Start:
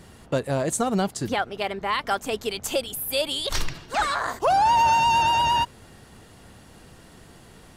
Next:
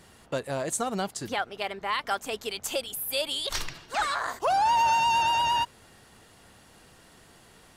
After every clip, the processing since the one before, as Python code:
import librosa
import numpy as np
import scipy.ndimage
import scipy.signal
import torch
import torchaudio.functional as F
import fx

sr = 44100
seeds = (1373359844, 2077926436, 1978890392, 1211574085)

y = fx.low_shelf(x, sr, hz=430.0, db=-8.0)
y = y * 10.0 ** (-2.5 / 20.0)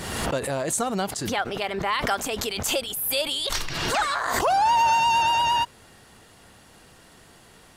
y = fx.pre_swell(x, sr, db_per_s=34.0)
y = y * 10.0 ** (3.0 / 20.0)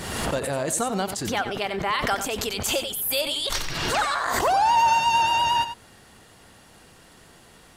y = x + 10.0 ** (-10.5 / 20.0) * np.pad(x, (int(91 * sr / 1000.0), 0))[:len(x)]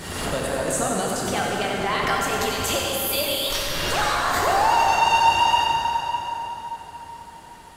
y = fx.rev_plate(x, sr, seeds[0], rt60_s=4.5, hf_ratio=0.65, predelay_ms=0, drr_db=-3.0)
y = y * 10.0 ** (-2.0 / 20.0)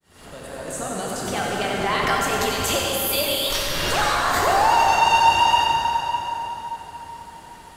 y = fx.fade_in_head(x, sr, length_s=1.86)
y = y * 10.0 ** (1.5 / 20.0)